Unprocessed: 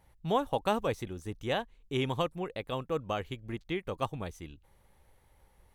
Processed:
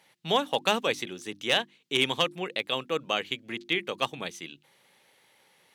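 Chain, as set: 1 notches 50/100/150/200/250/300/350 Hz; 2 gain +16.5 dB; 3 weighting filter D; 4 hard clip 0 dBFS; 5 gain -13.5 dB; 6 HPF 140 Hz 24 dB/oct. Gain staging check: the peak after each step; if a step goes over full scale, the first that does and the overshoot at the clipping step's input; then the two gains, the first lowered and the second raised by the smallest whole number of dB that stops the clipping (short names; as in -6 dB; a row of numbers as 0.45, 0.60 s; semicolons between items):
-14.5, +2.0, +5.5, 0.0, -13.5, -9.5 dBFS; step 2, 5.5 dB; step 2 +10.5 dB, step 5 -7.5 dB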